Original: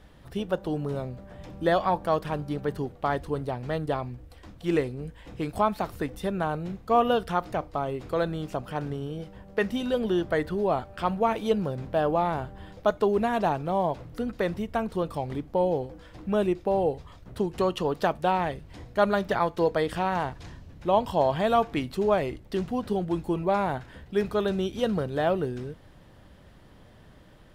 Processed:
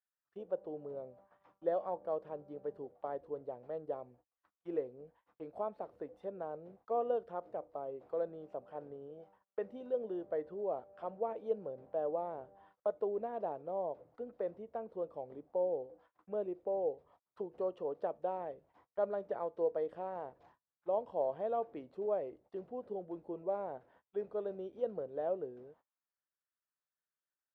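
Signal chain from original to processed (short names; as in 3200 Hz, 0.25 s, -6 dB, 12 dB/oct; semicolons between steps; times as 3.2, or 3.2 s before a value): auto-wah 520–1600 Hz, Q 2.6, down, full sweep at -28.5 dBFS; gate -56 dBFS, range -29 dB; gain -7.5 dB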